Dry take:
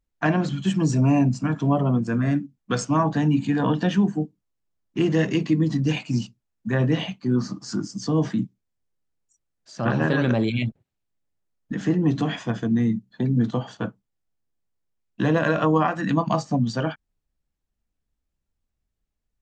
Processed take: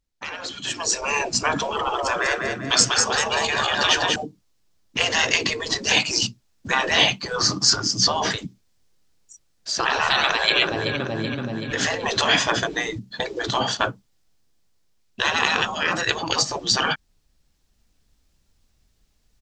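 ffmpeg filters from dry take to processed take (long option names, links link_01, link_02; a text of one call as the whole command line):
ffmpeg -i in.wav -filter_complex "[0:a]asettb=1/sr,asplit=3[link_01][link_02][link_03];[link_01]atrim=end=1.684[link_04];[link_02]atrim=start=1.68:end=4.16,asetpts=PTS-STARTPTS,afade=type=in:duration=0.004:curve=qsin,afade=type=out:start_time=2.476:duration=0.004:curve=qsin,aecho=1:1:195|390|585|780:0.562|0.202|0.0729|0.0262,atrim=end_sample=109368[link_05];[link_03]atrim=start=4.156[link_06];[link_04][link_05]acrossfade=duration=0.004:curve1=hsin:curve2=qsin[link_07];[link_07][link_06]acrossfade=duration=0.004:curve1=qsin:curve2=hsin,asettb=1/sr,asplit=3[link_08][link_09][link_10];[link_08]atrim=end=7.704[link_11];[link_09]atrim=start=7.7:end=8.31,asetpts=PTS-STARTPTS,afade=type=in:duration=0.004:curve=qsin,afade=type=out:start_time=0.606:duration=0.004:curve=qsin,lowpass=5500[link_12];[link_10]atrim=start=8.306[link_13];[link_11][link_12]acrossfade=duration=0.004:curve1=hsin:curve2=qsin[link_14];[link_14][link_13]acrossfade=duration=0.004:curve1=qsin:curve2=hsin,asplit=2[link_15][link_16];[link_16]afade=type=in:start_time=9.85:duration=0.01,afade=type=out:start_time=10.58:duration=0.01,aecho=0:1:380|760|1140|1520|1900|2280:0.298538|0.164196|0.0903078|0.0496693|0.0273181|0.015025[link_17];[link_15][link_17]amix=inputs=2:normalize=0,afftfilt=real='re*lt(hypot(re,im),0.126)':imag='im*lt(hypot(re,im),0.126)':win_size=1024:overlap=0.75,equalizer=frequency=4900:width=0.87:gain=8,dynaudnorm=framelen=180:gausssize=11:maxgain=15dB" out.wav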